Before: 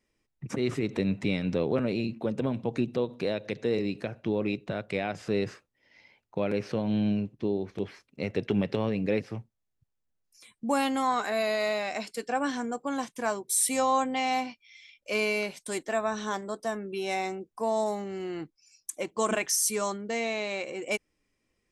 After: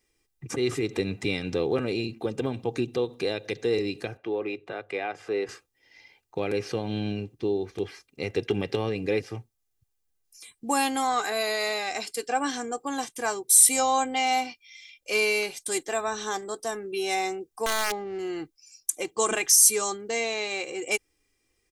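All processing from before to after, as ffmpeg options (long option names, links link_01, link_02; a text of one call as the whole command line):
ffmpeg -i in.wav -filter_complex "[0:a]asettb=1/sr,asplit=3[link_01][link_02][link_03];[link_01]atrim=end=4.174[link_04];[link_02]atrim=start=4.17:end=5.49,asetpts=PTS-STARTPTS,afade=type=in:duration=0.004:curve=qsin,afade=type=out:start_time=1.316:duration=0.004:curve=qsin,acrossover=split=320 2700:gain=0.224 1 0.2[link_05][link_06][link_07];[link_05][link_06][link_07]amix=inputs=3:normalize=0,bandreject=frequency=50:width_type=h:width=6,bandreject=frequency=100:width_type=h:width=6,bandreject=frequency=150:width_type=h:width=6[link_08];[link_03]atrim=start=5.486[link_09];[link_04][link_08]acrossfade=duration=0.004:curve1=hsin:curve2=qsin[link_10];[link_10][link_09]acrossfade=duration=0.004:curve1=qsin:curve2=hsin,asettb=1/sr,asplit=3[link_11][link_12][link_13];[link_11]atrim=end=17.664[link_14];[link_12]atrim=start=17.66:end=18.19,asetpts=PTS-STARTPTS,afade=type=in:duration=0.004:curve=qsin,afade=type=out:start_time=0.526:duration=0.004:curve=qsin,aemphasis=mode=reproduction:type=cd,aeval=exprs='(mod(11.9*val(0)+1,2)-1)/11.9':channel_layout=same,adynamicsmooth=sensitivity=6:basefreq=1500[link_15];[link_13]atrim=start=18.186[link_16];[link_14][link_15]acrossfade=duration=0.004:curve1=hsin:curve2=qsin[link_17];[link_17][link_16]acrossfade=duration=0.004:curve1=qsin:curve2=hsin,highshelf=frequency=4300:gain=10.5,aecho=1:1:2.5:0.54" out.wav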